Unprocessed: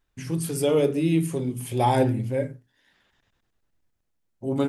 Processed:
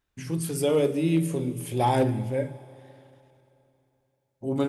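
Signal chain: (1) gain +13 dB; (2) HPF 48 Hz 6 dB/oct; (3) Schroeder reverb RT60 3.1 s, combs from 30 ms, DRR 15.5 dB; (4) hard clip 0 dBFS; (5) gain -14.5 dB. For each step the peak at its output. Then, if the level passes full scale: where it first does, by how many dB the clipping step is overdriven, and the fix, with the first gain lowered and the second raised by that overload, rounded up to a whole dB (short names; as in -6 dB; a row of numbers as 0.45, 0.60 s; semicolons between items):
+4.0, +4.0, +3.5, 0.0, -14.5 dBFS; step 1, 3.5 dB; step 1 +9 dB, step 5 -10.5 dB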